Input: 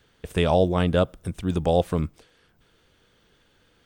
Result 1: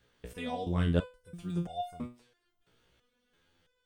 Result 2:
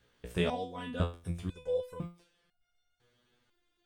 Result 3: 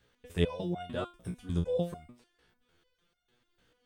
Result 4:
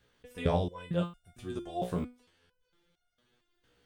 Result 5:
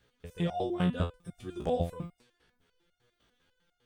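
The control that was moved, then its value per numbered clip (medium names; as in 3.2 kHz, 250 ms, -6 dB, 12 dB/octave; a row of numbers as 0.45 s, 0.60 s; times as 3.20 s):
resonator arpeggio, rate: 3 Hz, 2 Hz, 6.7 Hz, 4.4 Hz, 10 Hz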